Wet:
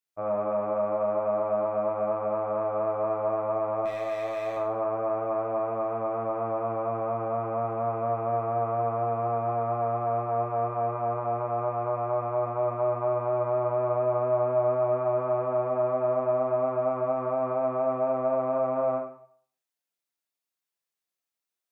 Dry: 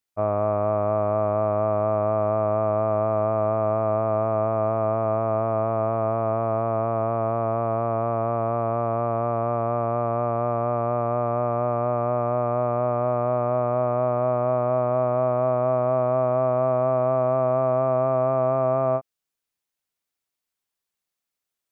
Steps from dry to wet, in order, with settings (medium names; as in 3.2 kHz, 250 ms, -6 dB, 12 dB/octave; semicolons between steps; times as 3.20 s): high-pass 220 Hz 6 dB/octave; 3.85–4.57 s: hard clipper -21.5 dBFS, distortion -23 dB; plate-style reverb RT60 0.56 s, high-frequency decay 1×, DRR -1.5 dB; trim -7.5 dB